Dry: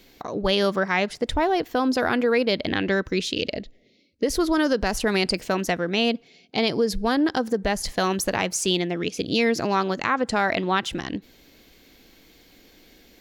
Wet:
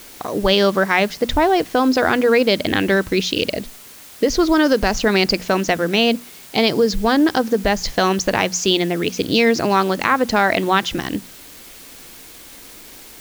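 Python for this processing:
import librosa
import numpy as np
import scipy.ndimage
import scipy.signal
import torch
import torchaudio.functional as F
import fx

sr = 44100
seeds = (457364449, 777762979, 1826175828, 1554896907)

p1 = scipy.signal.sosfilt(scipy.signal.butter(12, 7000.0, 'lowpass', fs=sr, output='sos'), x)
p2 = fx.hum_notches(p1, sr, base_hz=60, count=4)
p3 = fx.quant_dither(p2, sr, seeds[0], bits=6, dither='triangular')
p4 = p2 + (p3 * librosa.db_to_amplitude(-8.5))
y = p4 * librosa.db_to_amplitude(3.5)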